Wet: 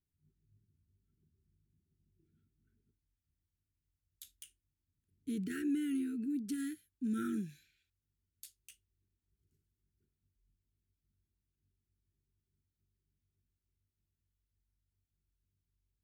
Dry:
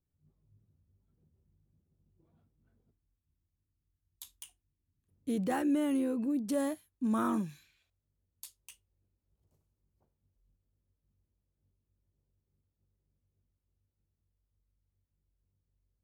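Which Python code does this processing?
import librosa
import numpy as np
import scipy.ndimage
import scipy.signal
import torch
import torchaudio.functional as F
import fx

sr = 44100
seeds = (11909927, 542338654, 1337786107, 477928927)

y = fx.brickwall_bandstop(x, sr, low_hz=450.0, high_hz=1300.0)
y = y * librosa.db_to_amplitude(-4.5)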